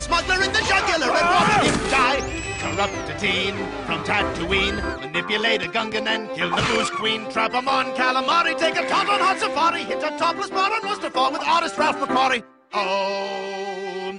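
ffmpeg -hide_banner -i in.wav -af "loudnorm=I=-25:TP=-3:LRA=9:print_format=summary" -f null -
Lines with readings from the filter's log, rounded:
Input Integrated:    -21.2 LUFS
Input True Peak:      -6.6 dBTP
Input LRA:             2.8 LU
Input Threshold:     -31.2 LUFS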